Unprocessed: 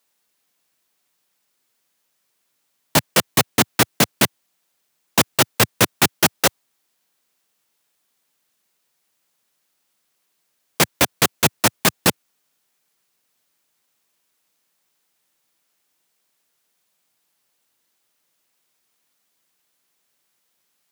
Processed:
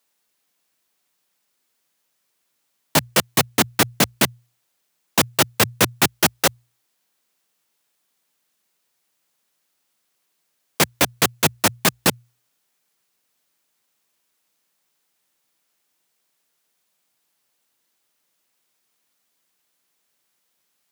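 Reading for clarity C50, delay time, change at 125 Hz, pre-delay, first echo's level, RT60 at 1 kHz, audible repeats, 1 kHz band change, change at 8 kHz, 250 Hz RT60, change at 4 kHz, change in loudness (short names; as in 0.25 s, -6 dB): none, none, -1.5 dB, none, none, none, none, -1.0 dB, -1.0 dB, none, -1.0 dB, -1.0 dB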